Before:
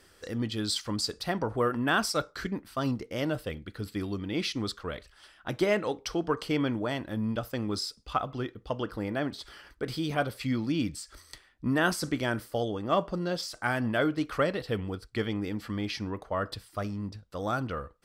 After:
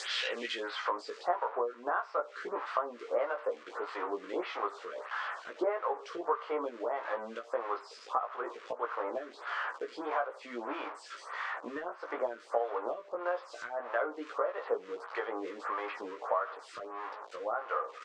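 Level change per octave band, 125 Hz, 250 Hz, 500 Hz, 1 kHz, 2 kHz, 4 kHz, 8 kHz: under -35 dB, -15.5 dB, -2.5 dB, +0.5 dB, -4.5 dB, -8.0 dB, under -15 dB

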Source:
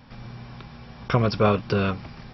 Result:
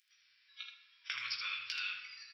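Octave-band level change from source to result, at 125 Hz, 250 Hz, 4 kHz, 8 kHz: under -40 dB, under -40 dB, -2.5 dB, n/a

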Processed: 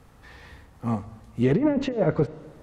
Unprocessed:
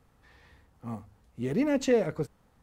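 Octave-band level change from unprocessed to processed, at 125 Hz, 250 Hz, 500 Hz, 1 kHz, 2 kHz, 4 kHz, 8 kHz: +10.5 dB, +5.5 dB, +3.0 dB, +6.5 dB, +1.5 dB, +1.5 dB, n/a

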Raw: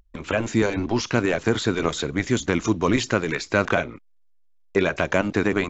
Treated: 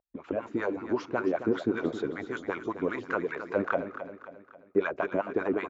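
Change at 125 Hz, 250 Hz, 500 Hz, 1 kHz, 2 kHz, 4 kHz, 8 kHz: -16.5 dB, -8.0 dB, -6.0 dB, -6.5 dB, -10.0 dB, -20.0 dB, n/a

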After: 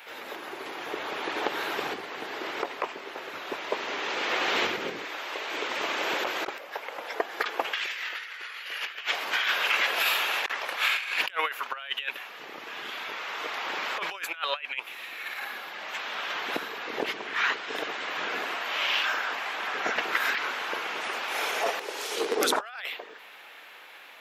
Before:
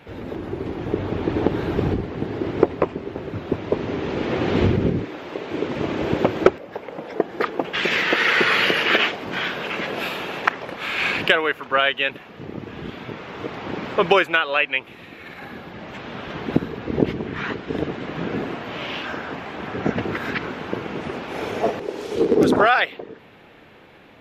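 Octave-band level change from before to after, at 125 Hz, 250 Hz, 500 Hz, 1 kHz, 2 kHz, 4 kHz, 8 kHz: under -30 dB, -18.0 dB, -12.0 dB, -5.0 dB, -5.0 dB, -2.5 dB, +5.5 dB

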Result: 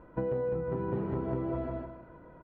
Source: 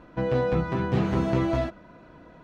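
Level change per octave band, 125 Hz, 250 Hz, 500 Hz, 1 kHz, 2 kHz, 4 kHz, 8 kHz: -9.5 dB, -8.5 dB, -5.5 dB, -9.5 dB, -14.5 dB, under -25 dB, n/a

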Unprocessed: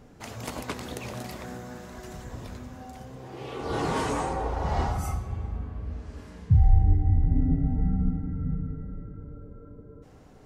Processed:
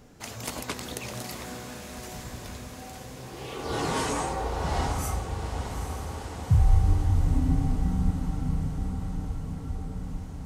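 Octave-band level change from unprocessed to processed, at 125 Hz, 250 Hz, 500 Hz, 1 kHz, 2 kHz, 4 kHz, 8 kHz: -0.5, -0.5, -0.5, +0.5, +2.0, +5.0, +7.0 dB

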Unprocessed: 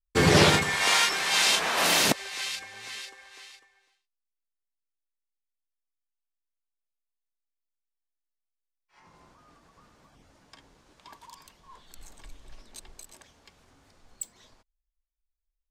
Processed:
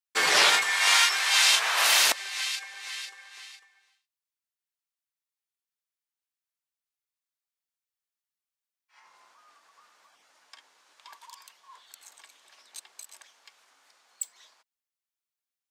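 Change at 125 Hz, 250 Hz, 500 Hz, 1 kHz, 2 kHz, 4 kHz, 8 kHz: under -25 dB, under -15 dB, -9.0 dB, -0.5 dB, +2.0 dB, +2.5 dB, +2.5 dB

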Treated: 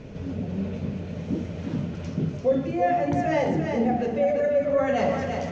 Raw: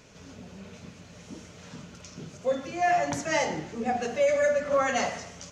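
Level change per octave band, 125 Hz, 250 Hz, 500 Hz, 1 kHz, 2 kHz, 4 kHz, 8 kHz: +13.5 dB, +10.5 dB, +3.5 dB, +1.0 dB, -3.0 dB, -4.5 dB, under -10 dB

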